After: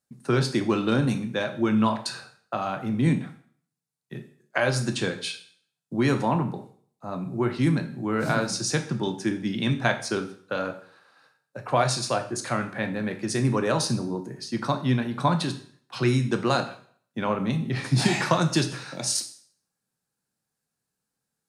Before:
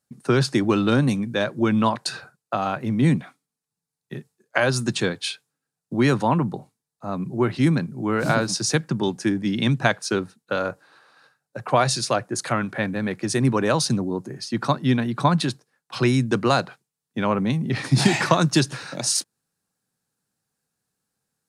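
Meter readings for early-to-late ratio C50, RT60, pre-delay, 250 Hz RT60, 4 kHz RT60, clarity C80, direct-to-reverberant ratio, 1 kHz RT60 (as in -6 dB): 12.0 dB, 0.55 s, 6 ms, 0.50 s, 0.50 s, 15.0 dB, 6.0 dB, 0.55 s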